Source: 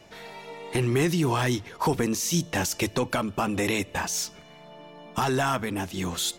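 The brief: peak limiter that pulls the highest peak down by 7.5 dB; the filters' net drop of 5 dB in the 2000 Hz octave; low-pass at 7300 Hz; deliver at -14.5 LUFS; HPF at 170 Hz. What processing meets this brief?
HPF 170 Hz; LPF 7300 Hz; bell 2000 Hz -6.5 dB; gain +16 dB; limiter -4 dBFS

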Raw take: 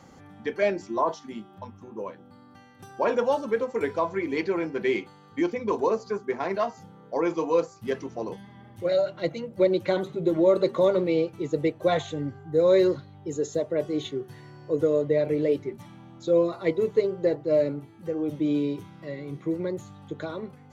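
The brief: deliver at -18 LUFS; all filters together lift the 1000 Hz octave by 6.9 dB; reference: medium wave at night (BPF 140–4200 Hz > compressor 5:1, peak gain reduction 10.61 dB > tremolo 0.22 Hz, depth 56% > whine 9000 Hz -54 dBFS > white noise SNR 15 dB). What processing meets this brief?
BPF 140–4200 Hz; bell 1000 Hz +8 dB; compressor 5:1, threshold -24 dBFS; tremolo 0.22 Hz, depth 56%; whine 9000 Hz -54 dBFS; white noise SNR 15 dB; gain +14.5 dB

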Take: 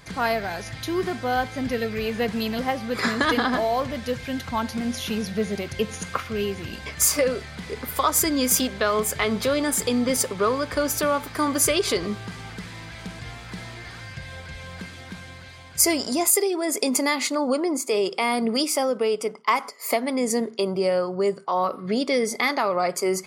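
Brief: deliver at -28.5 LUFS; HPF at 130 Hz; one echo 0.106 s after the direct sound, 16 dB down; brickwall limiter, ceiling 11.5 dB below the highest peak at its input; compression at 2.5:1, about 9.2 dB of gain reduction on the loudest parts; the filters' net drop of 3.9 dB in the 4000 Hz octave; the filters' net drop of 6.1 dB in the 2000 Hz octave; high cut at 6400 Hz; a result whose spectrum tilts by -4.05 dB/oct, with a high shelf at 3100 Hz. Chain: HPF 130 Hz; LPF 6400 Hz; bell 2000 Hz -7.5 dB; high shelf 3100 Hz +3.5 dB; bell 4000 Hz -5 dB; compressor 2.5:1, threshold -33 dBFS; limiter -27.5 dBFS; echo 0.106 s -16 dB; gain +8 dB

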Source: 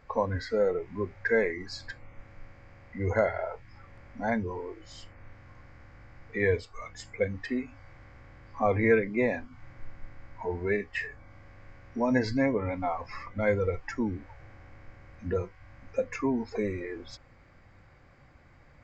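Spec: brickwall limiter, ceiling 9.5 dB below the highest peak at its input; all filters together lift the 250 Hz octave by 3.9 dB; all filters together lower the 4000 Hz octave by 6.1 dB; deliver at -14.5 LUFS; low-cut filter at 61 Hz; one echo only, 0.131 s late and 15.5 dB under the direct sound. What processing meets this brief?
HPF 61 Hz; bell 250 Hz +4.5 dB; bell 4000 Hz -8 dB; limiter -19 dBFS; echo 0.131 s -15.5 dB; gain +17 dB

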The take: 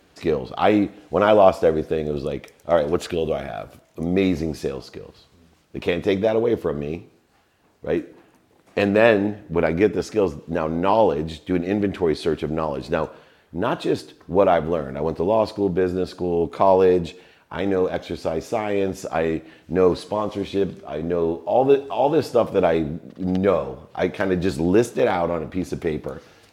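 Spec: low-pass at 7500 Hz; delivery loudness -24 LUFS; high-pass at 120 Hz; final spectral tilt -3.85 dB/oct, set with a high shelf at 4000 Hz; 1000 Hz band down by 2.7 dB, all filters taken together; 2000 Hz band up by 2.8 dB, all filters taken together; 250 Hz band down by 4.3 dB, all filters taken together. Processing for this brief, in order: HPF 120 Hz; LPF 7500 Hz; bell 250 Hz -5.5 dB; bell 1000 Hz -4.5 dB; bell 2000 Hz +3.5 dB; high shelf 4000 Hz +7 dB

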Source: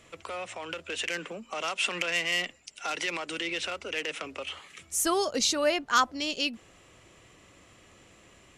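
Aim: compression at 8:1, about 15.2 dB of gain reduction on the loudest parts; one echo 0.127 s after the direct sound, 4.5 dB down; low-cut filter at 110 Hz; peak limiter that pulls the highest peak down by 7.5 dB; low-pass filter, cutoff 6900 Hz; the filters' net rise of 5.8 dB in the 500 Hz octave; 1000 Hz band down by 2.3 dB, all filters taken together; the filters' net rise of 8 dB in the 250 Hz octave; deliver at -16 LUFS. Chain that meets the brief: HPF 110 Hz; LPF 6900 Hz; bell 250 Hz +8.5 dB; bell 500 Hz +6.5 dB; bell 1000 Hz -5.5 dB; compressor 8:1, threshold -34 dBFS; limiter -29 dBFS; echo 0.127 s -4.5 dB; gain +22 dB

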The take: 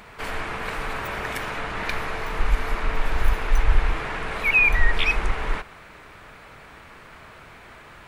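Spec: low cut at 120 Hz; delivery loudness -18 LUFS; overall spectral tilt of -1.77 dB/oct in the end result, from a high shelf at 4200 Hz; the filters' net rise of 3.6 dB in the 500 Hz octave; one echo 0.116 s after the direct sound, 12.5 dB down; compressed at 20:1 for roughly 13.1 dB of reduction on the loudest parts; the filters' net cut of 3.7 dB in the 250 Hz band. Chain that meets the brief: HPF 120 Hz; bell 250 Hz -7.5 dB; bell 500 Hz +6.5 dB; high shelf 4200 Hz -8 dB; compressor 20:1, threshold -29 dBFS; echo 0.116 s -12.5 dB; gain +14.5 dB

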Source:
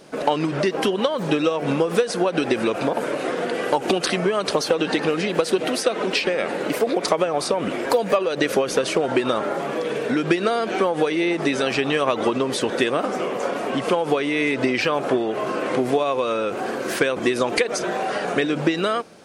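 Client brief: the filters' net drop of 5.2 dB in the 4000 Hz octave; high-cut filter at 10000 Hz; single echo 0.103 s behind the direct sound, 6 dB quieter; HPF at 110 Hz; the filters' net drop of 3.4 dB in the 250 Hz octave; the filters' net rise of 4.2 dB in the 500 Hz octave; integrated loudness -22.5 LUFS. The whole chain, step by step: HPF 110 Hz; LPF 10000 Hz; bell 250 Hz -9 dB; bell 500 Hz +7.5 dB; bell 4000 Hz -7 dB; echo 0.103 s -6 dB; gain -3.5 dB

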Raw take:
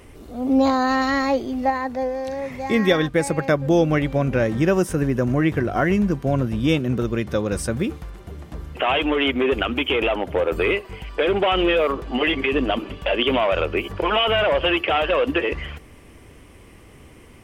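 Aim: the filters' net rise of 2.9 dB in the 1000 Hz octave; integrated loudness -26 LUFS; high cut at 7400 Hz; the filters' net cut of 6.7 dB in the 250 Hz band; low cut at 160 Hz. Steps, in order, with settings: HPF 160 Hz; LPF 7400 Hz; bell 250 Hz -8.5 dB; bell 1000 Hz +4.5 dB; gain -4 dB

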